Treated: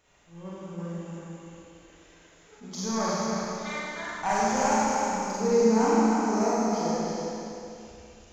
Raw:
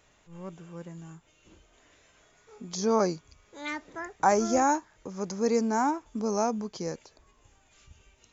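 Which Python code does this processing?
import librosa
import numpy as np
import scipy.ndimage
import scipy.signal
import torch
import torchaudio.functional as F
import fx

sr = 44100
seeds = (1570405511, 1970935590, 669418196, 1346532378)

y = fx.diode_clip(x, sr, knee_db=-19.0)
y = fx.peak_eq(y, sr, hz=330.0, db=-12.5, octaves=0.78, at=(2.82, 5.3))
y = y + 10.0 ** (-5.5 / 20.0) * np.pad(y, (int(316 * sr / 1000.0), 0))[:len(y)]
y = fx.rev_schroeder(y, sr, rt60_s=2.7, comb_ms=32, drr_db=-8.0)
y = fx.attack_slew(y, sr, db_per_s=240.0)
y = y * librosa.db_to_amplitude(-4.5)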